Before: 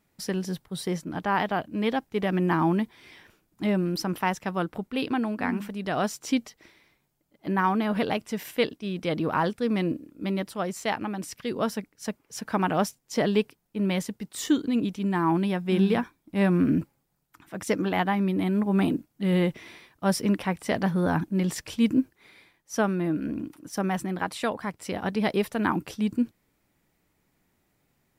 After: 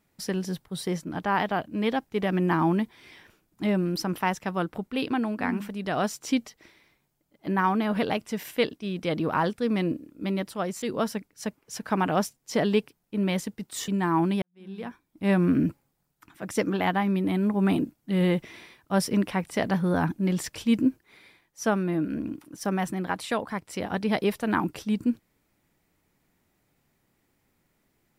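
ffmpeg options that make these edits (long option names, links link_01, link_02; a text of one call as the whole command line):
ffmpeg -i in.wav -filter_complex "[0:a]asplit=4[link_01][link_02][link_03][link_04];[link_01]atrim=end=10.822[link_05];[link_02]atrim=start=11.438:end=14.502[link_06];[link_03]atrim=start=14.998:end=15.54,asetpts=PTS-STARTPTS,afade=type=out:start_time=0.538:duration=0.004:curve=hsin[link_07];[link_04]atrim=start=15.54,asetpts=PTS-STARTPTS,afade=type=in:duration=0.83:curve=qua[link_08];[link_05][link_06]acrossfade=duration=0.004:curve1=hsin:curve2=hsin[link_09];[link_07][link_08]concat=n=2:v=0:a=1[link_10];[link_09][link_10]acrossfade=duration=0.004:curve1=hsin:curve2=hsin" out.wav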